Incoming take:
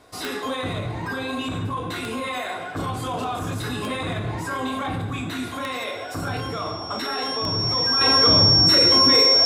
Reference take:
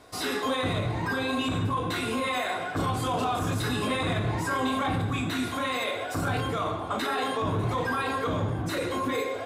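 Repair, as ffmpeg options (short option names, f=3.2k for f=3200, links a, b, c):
-af "adeclick=t=4,bandreject=f=5.5k:w=30,asetnsamples=n=441:p=0,asendcmd='8.01 volume volume -7.5dB',volume=0dB"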